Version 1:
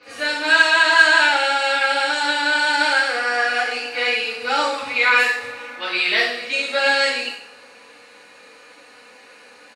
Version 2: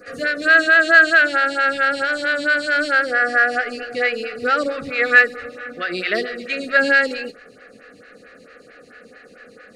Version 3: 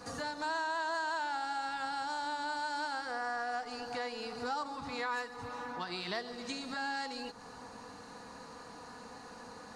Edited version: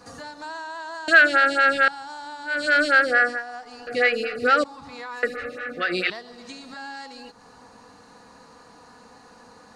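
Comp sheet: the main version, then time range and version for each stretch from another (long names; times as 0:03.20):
3
0:01.08–0:01.88: punch in from 2
0:02.56–0:03.31: punch in from 2, crossfade 0.24 s
0:03.87–0:04.64: punch in from 2
0:05.23–0:06.10: punch in from 2
not used: 1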